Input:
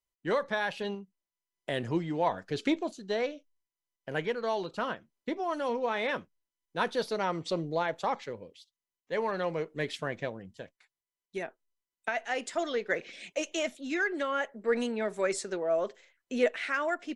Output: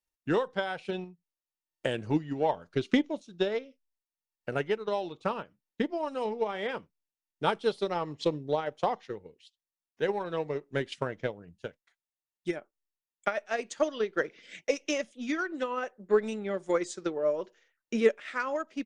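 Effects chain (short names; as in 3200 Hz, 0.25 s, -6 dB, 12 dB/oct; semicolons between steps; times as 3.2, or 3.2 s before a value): dynamic EQ 1800 Hz, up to -4 dB, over -45 dBFS, Q 2; transient shaper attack +8 dB, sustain -5 dB; varispeed -9%; gain -2 dB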